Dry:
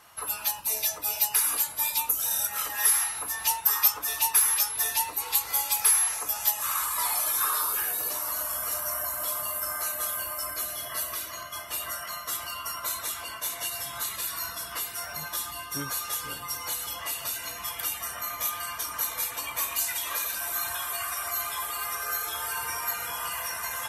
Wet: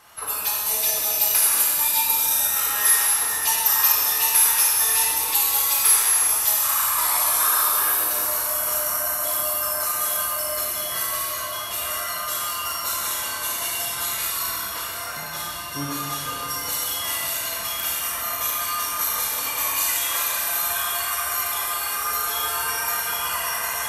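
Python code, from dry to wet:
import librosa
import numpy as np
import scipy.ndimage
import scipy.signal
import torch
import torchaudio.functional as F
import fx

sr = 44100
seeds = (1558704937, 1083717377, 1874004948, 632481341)

y = fx.high_shelf(x, sr, hz=5000.0, db=-7.0, at=(14.56, 16.39))
y = fx.rev_schroeder(y, sr, rt60_s=2.2, comb_ms=28, drr_db=-3.5)
y = y * 10.0 ** (2.0 / 20.0)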